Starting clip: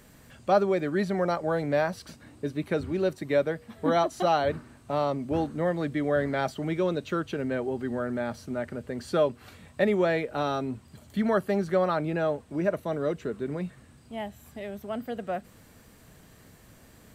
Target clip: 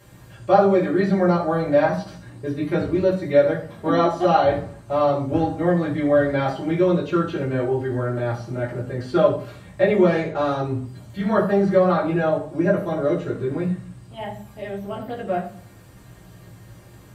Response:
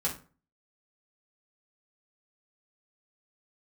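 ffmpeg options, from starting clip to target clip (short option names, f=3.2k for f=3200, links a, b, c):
-filter_complex "[0:a]asettb=1/sr,asplit=3[a][b][c];[a]atrim=end=10.064[d];[b]atrim=start=10.06:end=10.64,asetpts=PTS-STARTPTS,afade=t=in:d=0.004:c=qsin,afade=t=out:st=0.576:d=0.004:c=qsin,adynamicsmooth=sensitivity=5.5:basefreq=1.7k[e];[c]atrim=start=10.636[f];[d][e]acrossfade=d=0.004:c1=hsin:c2=qsin[g];[g][f]acrossfade=d=0.004:c1=qsin:c2=hsin[h];[1:a]atrim=start_sample=2205,asetrate=31311,aresample=44100[i];[h][i]afir=irnorm=-1:irlink=0,acrossover=split=4900[j][k];[k]acompressor=threshold=-54dB:ratio=4:attack=1:release=60[l];[j][l]amix=inputs=2:normalize=0,volume=-2.5dB"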